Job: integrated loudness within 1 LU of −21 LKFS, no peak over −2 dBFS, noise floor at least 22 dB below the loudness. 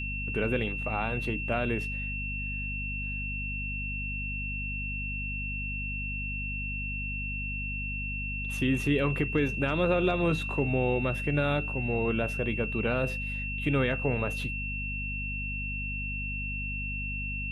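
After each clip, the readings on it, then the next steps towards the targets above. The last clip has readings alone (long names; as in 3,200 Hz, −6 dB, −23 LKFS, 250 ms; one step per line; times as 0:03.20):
mains hum 50 Hz; hum harmonics up to 250 Hz; level of the hum −34 dBFS; interfering tone 2,700 Hz; level of the tone −34 dBFS; integrated loudness −30.5 LKFS; sample peak −13.5 dBFS; target loudness −21.0 LKFS
→ hum removal 50 Hz, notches 5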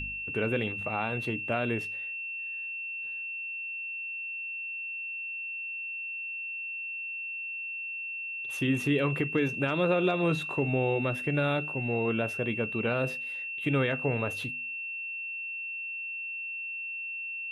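mains hum none found; interfering tone 2,700 Hz; level of the tone −34 dBFS
→ notch filter 2,700 Hz, Q 30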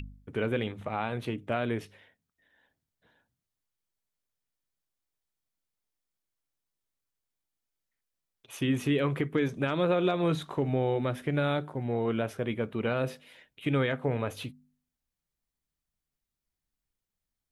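interfering tone none found; integrated loudness −30.5 LKFS; sample peak −15.5 dBFS; target loudness −21.0 LKFS
→ level +9.5 dB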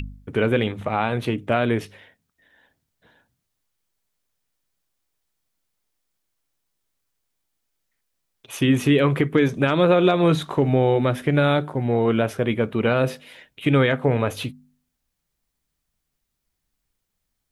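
integrated loudness −21.0 LKFS; sample peak −6.0 dBFS; background noise floor −78 dBFS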